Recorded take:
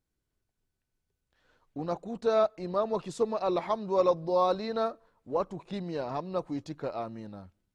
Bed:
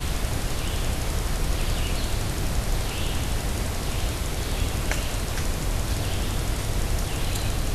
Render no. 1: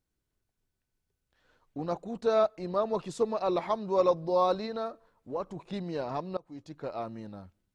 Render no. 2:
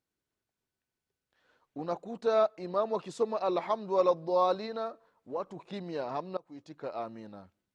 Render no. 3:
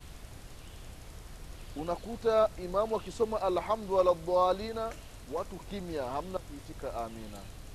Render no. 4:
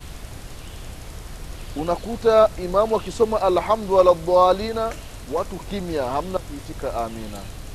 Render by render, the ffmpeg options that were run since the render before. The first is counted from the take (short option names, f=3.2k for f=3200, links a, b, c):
-filter_complex "[0:a]asettb=1/sr,asplit=3[a][b][c];[a]atrim=end=4.664[d];[b]atrim=start=4.66:end=5.56,asetpts=PTS-STARTPTS,afade=t=in:d=0.004:c=qsin,afade=t=out:st=0.896:d=0.004:c=qsin,acompressor=threshold=-37dB:ratio=1.5:attack=3.2:release=140:knee=1:detection=peak[e];[c]atrim=start=5.556[f];[d][e]acrossfade=d=0.004:c1=hsin:c2=qsin[g];[g][f]acrossfade=d=0.004:c1=qsin:c2=hsin,asplit=2[h][i];[h]atrim=end=6.37,asetpts=PTS-STARTPTS,afade=t=out:st=6.366:d=0.004:c=hsin:silence=0.0668344[j];[i]atrim=start=6.37,asetpts=PTS-STARTPTS,afade=t=in:d=0.68:silence=0.0668344[k];[j][k]concat=n=2:v=0:a=1"
-af "highpass=f=270:p=1,highshelf=f=7.6k:g=-7.5"
-filter_complex "[1:a]volume=-21dB[a];[0:a][a]amix=inputs=2:normalize=0"
-af "volume=11dB"